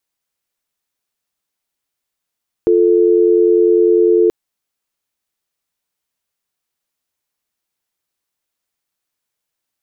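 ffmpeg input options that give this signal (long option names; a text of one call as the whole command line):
ffmpeg -f lavfi -i "aevalsrc='0.282*(sin(2*PI*350*t)+sin(2*PI*440*t))':duration=1.63:sample_rate=44100" out.wav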